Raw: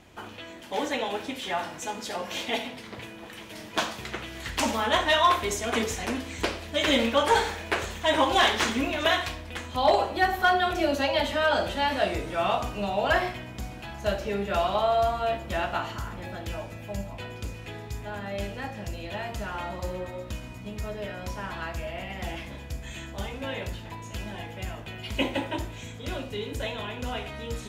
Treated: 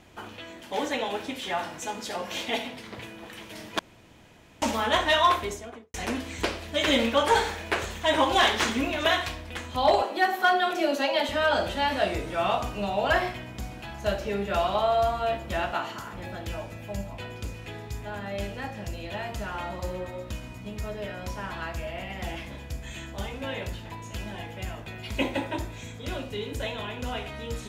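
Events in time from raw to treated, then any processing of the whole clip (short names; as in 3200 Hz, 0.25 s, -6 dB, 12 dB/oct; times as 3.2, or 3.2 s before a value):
3.79–4.62 room tone
5.25–5.94 studio fade out
10.02–11.29 HPF 230 Hz 24 dB/oct
15.72–16.14 HPF 180 Hz
24.82–26.03 notch 3000 Hz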